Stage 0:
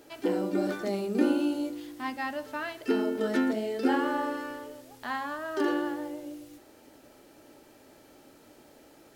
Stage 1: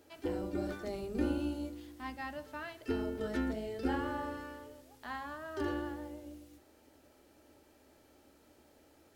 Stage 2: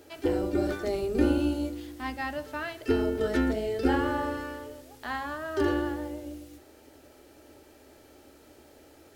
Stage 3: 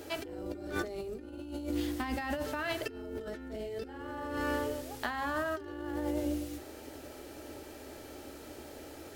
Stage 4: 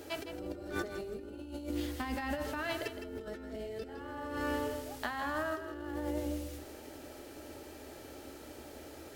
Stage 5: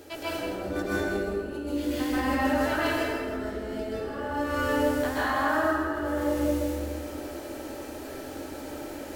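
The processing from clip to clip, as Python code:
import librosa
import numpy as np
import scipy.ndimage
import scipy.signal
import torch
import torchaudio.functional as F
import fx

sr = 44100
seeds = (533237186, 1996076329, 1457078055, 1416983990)

y1 = fx.octave_divider(x, sr, octaves=2, level_db=-5.0)
y1 = fx.hum_notches(y1, sr, base_hz=50, count=4)
y1 = F.gain(torch.from_numpy(y1), -8.5).numpy()
y2 = fx.graphic_eq_31(y1, sr, hz=(200, 400, 1000), db=(-7, 3, -3))
y2 = F.gain(torch.from_numpy(y2), 9.0).numpy()
y3 = fx.over_compress(y2, sr, threshold_db=-38.0, ratio=-1.0)
y4 = fx.echo_feedback(y3, sr, ms=161, feedback_pct=21, wet_db=-9.5)
y4 = F.gain(torch.from_numpy(y4), -2.0).numpy()
y5 = fx.rev_plate(y4, sr, seeds[0], rt60_s=1.9, hf_ratio=0.5, predelay_ms=115, drr_db=-10.0)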